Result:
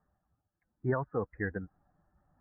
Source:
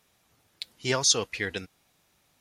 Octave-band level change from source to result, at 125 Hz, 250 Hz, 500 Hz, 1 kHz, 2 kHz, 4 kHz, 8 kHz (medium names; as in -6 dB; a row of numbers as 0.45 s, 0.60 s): +1.5 dB, -0.5 dB, -3.0 dB, -4.0 dB, -7.5 dB, under -40 dB, under -40 dB